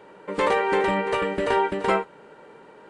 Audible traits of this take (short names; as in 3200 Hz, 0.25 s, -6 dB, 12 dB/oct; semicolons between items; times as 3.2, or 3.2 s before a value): noise floor -49 dBFS; spectral tilt -3.0 dB/oct